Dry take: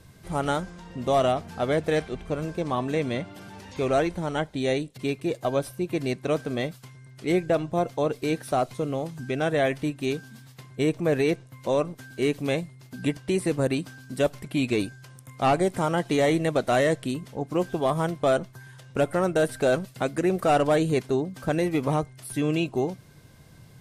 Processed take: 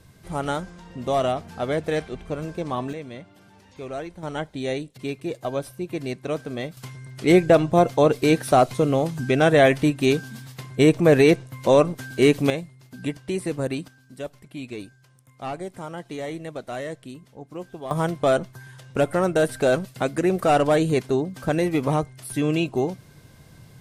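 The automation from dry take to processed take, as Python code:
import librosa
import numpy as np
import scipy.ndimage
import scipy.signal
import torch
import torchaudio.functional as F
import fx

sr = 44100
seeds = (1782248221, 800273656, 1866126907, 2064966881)

y = fx.gain(x, sr, db=fx.steps((0.0, -0.5), (2.93, -9.5), (4.23, -2.0), (6.77, 8.0), (12.5, -2.0), (13.88, -10.0), (17.91, 2.5)))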